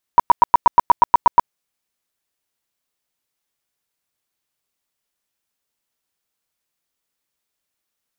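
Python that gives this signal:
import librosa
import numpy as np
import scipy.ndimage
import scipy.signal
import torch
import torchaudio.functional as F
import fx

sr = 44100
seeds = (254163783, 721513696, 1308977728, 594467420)

y = fx.tone_burst(sr, hz=960.0, cycles=16, every_s=0.12, bursts=11, level_db=-4.5)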